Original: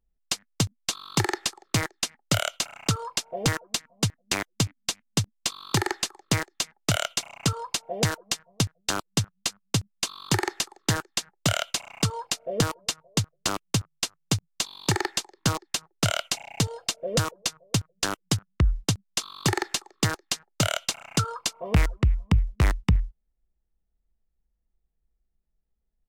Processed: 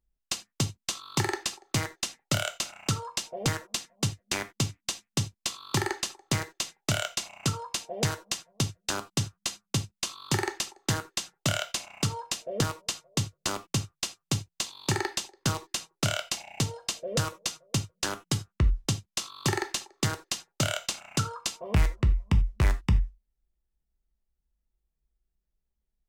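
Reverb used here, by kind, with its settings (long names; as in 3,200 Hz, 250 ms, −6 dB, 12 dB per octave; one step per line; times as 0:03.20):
reverb whose tail is shaped and stops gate 110 ms falling, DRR 7 dB
level −4 dB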